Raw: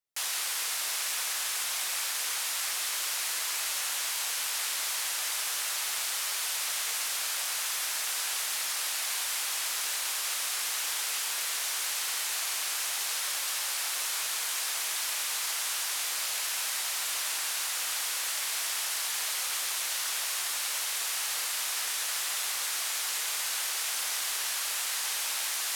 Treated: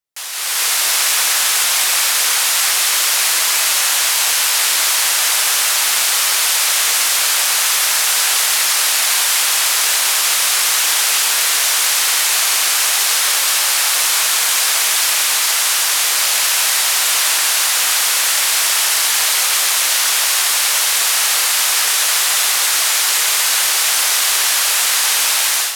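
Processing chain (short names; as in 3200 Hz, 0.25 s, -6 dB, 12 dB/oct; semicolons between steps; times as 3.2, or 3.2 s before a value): AGC gain up to 14 dB; on a send: reverb RT60 5.1 s, pre-delay 85 ms, DRR 11 dB; on the sum: gain +3 dB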